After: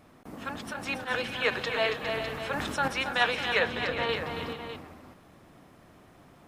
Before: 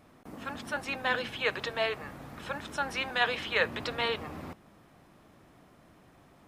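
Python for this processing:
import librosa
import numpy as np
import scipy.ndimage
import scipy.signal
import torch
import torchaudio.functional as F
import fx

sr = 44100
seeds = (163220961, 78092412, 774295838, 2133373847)

y = fx.auto_swell(x, sr, attack_ms=104.0, at=(0.72, 1.28), fade=0.02)
y = fx.high_shelf(y, sr, hz=2600.0, db=-11.5, at=(3.59, 4.09))
y = fx.echo_multitap(y, sr, ms=(276, 303, 406, 456, 603), db=(-8.0, -17.5, -11.0, -19.5, -11.5))
y = fx.sustainer(y, sr, db_per_s=28.0, at=(1.98, 2.88))
y = y * librosa.db_to_amplitude(2.0)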